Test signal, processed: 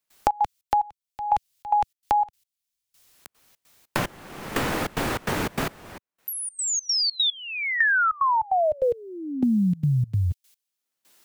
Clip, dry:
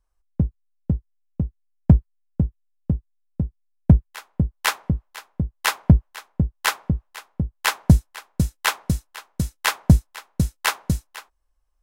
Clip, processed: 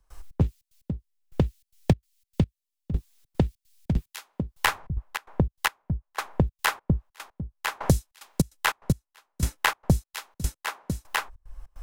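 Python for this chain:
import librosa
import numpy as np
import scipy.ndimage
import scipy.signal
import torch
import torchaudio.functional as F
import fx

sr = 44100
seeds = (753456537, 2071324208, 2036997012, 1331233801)

y = fx.step_gate(x, sr, bpm=148, pattern='.xx.xx.x.....xxx', floor_db=-24.0, edge_ms=4.5)
y = fx.band_squash(y, sr, depth_pct=100)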